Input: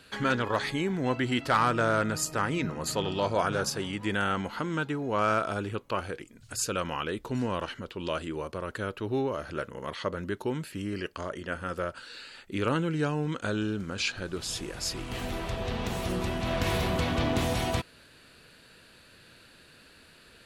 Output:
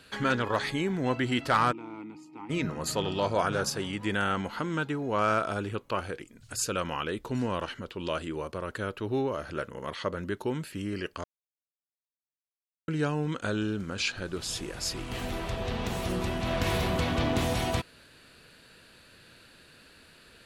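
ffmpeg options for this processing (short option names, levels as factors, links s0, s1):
-filter_complex "[0:a]asplit=3[s0][s1][s2];[s0]afade=t=out:st=1.71:d=0.02[s3];[s1]asplit=3[s4][s5][s6];[s4]bandpass=f=300:t=q:w=8,volume=1[s7];[s5]bandpass=f=870:t=q:w=8,volume=0.501[s8];[s6]bandpass=f=2240:t=q:w=8,volume=0.355[s9];[s7][s8][s9]amix=inputs=3:normalize=0,afade=t=in:st=1.71:d=0.02,afade=t=out:st=2.49:d=0.02[s10];[s2]afade=t=in:st=2.49:d=0.02[s11];[s3][s10][s11]amix=inputs=3:normalize=0,asplit=3[s12][s13][s14];[s12]atrim=end=11.24,asetpts=PTS-STARTPTS,afade=t=out:st=11.236:d=0.004:c=hsin[s15];[s13]atrim=start=11.24:end=12.88,asetpts=PTS-STARTPTS,volume=0[s16];[s14]atrim=start=12.88,asetpts=PTS-STARTPTS,afade=t=in:d=0.004:c=hsin[s17];[s15][s16][s17]concat=n=3:v=0:a=1"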